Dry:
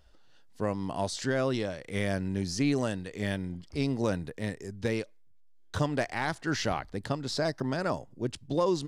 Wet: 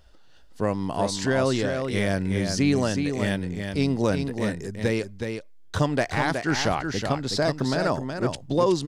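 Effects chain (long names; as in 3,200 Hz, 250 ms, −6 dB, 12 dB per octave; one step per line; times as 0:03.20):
single-tap delay 370 ms −6 dB
level +5.5 dB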